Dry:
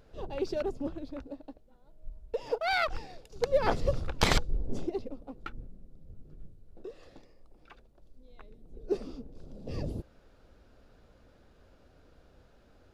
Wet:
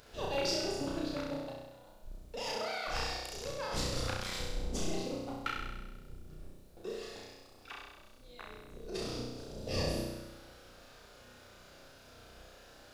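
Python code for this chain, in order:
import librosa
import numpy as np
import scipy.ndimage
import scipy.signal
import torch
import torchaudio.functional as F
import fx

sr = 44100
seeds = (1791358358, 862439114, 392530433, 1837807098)

y = fx.octave_divider(x, sr, octaves=1, level_db=-2.0)
y = fx.low_shelf(y, sr, hz=390.0, db=-11.5)
y = fx.over_compress(y, sr, threshold_db=-40.0, ratio=-1.0)
y = fx.high_shelf(y, sr, hz=2800.0, db=9.0)
y = fx.room_flutter(y, sr, wall_m=5.6, rt60_s=1.1)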